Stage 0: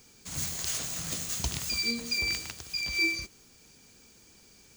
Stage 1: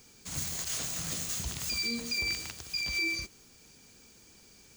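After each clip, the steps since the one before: limiter -23 dBFS, peak gain reduction 10.5 dB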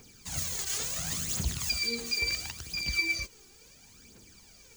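phaser 0.72 Hz, delay 2.7 ms, feedback 58%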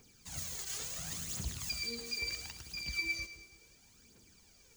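split-band echo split 500 Hz, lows 0.166 s, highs 0.108 s, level -12 dB; gain -8 dB

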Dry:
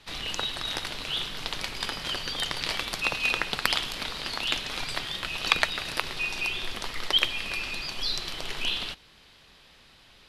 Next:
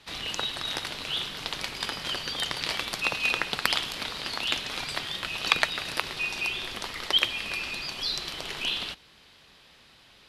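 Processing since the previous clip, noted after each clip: HPF 70 Hz 6 dB/oct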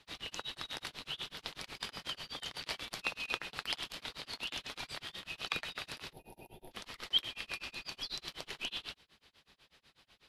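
spectral gain 6.12–6.72, 960–9900 Hz -23 dB; tremolo 8.1 Hz, depth 99%; gain -6.5 dB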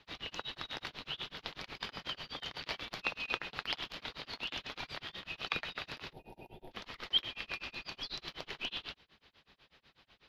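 running mean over 5 samples; gain +2 dB

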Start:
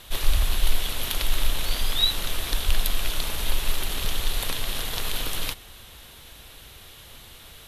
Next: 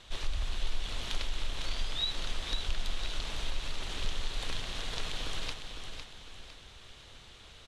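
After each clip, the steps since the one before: LPF 7400 Hz 24 dB/oct; compressor 2:1, threshold -23 dBFS, peak gain reduction 7 dB; feedback echo 0.505 s, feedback 40%, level -7 dB; gain -7 dB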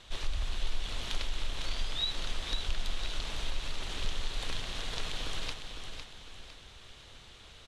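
nothing audible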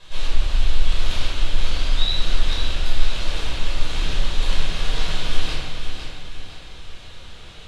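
shoebox room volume 720 m³, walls mixed, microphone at 5.3 m; gain -1 dB

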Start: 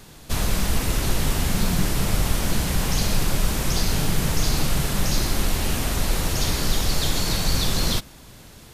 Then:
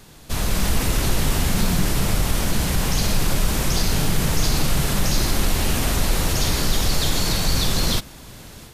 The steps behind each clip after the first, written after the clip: AGC gain up to 6.5 dB; in parallel at 0 dB: limiter -12.5 dBFS, peak gain reduction 9 dB; on the sum: gain -7 dB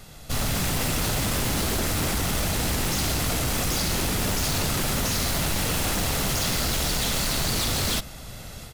comb 1.5 ms, depth 42%; wavefolder -20 dBFS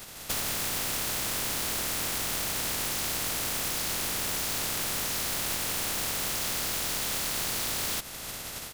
spectral contrast lowered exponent 0.33; compressor 4:1, threshold -29 dBFS, peak gain reduction 7.5 dB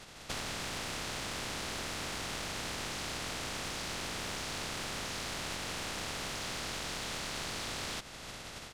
air absorption 77 m; gain -3.5 dB

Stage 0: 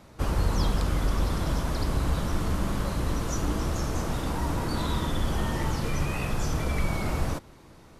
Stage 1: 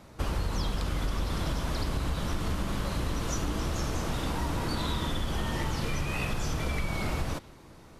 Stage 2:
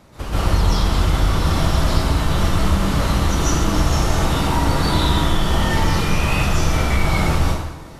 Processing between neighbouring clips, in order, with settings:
dynamic EQ 3200 Hz, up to +5 dB, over -52 dBFS, Q 0.86; compressor, threshold -26 dBFS, peak gain reduction 7.5 dB
plate-style reverb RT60 0.94 s, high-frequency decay 0.8×, pre-delay 0.115 s, DRR -10 dB; gain +2.5 dB

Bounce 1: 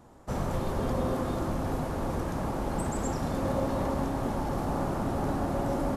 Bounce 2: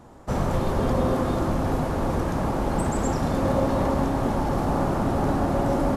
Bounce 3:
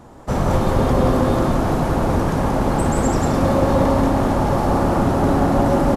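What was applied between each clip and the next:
high shelf 7700 Hz -5 dB; gain +6.5 dB
echo 0.18 s -4 dB; gain +5 dB

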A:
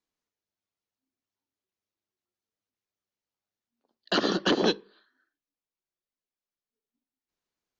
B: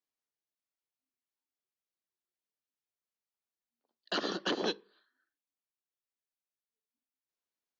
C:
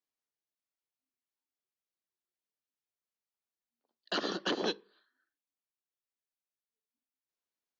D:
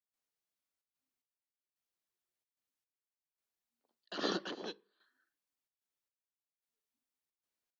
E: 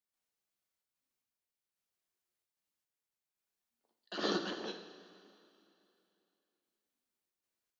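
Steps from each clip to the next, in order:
low shelf 200 Hz -10.5 dB; gain -7 dB
nothing audible
step gate ".xxxxx.xx..." 111 bpm -12 dB; gain +1 dB
reverb, pre-delay 3 ms, DRR 4 dB

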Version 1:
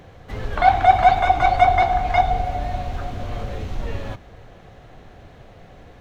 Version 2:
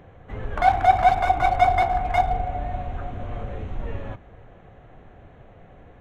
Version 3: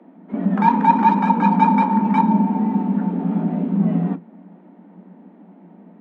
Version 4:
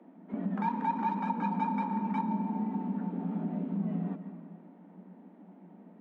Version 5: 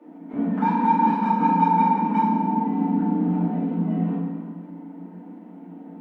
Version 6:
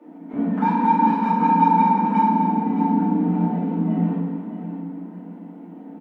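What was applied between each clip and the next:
Wiener smoothing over 9 samples; gain -3 dB
frequency shift +170 Hz; gate -34 dBFS, range -6 dB; tilt -4 dB/oct; gain +1 dB
on a send at -13 dB: reverb RT60 1.5 s, pre-delay 95 ms; on the sum: compressor 2:1, threshold -26 dBFS, peak gain reduction 10 dB; gain -8 dB
FDN reverb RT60 0.98 s, low-frequency decay 1.55×, high-frequency decay 0.9×, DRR -9 dB
feedback echo 0.619 s, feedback 29%, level -10 dB; gain +1.5 dB

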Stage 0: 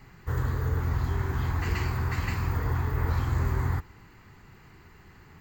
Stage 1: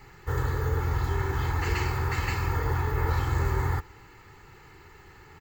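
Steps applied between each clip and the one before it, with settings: low shelf 200 Hz -6 dB; comb 2.3 ms, depth 54%; gain +3 dB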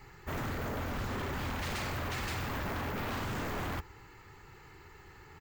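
wavefolder -28 dBFS; gain -3 dB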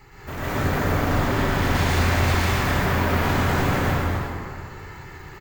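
echo 0.258 s -5.5 dB; plate-style reverb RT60 2.1 s, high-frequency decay 0.55×, pre-delay 0.105 s, DRR -9 dB; gain +3.5 dB

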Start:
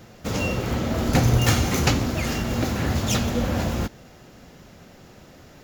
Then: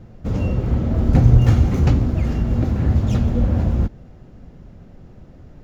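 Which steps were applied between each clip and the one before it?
tilt -4 dB/oct; gain -5.5 dB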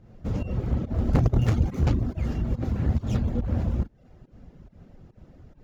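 added harmonics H 5 -22 dB, 6 -11 dB, 8 -15 dB, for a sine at -1 dBFS; pump 141 bpm, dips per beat 1, -10 dB, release 0.17 s; reverb removal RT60 0.52 s; gain -8 dB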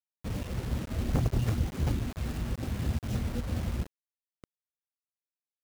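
requantised 6-bit, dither none; gain -6.5 dB

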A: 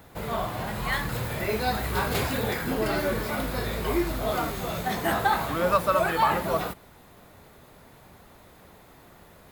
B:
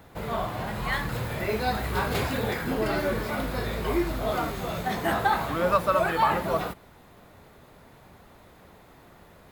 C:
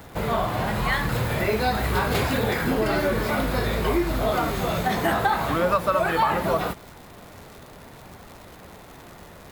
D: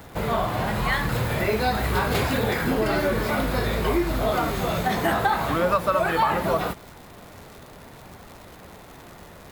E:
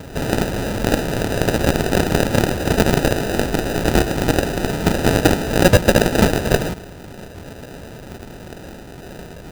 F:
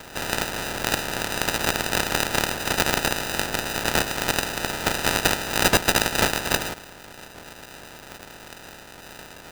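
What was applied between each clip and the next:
high shelf 5600 Hz -6 dB
compressor 2.5:1, threshold -28 dBFS, peak gain reduction 8 dB; crackle 210/s -43 dBFS; gain +7.5 dB
nothing audible
added harmonics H 7 -10 dB, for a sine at -9 dBFS; sample-rate reducer 1100 Hz, jitter 0%; gain +7.5 dB
spectral limiter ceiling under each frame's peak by 19 dB; gain -7 dB

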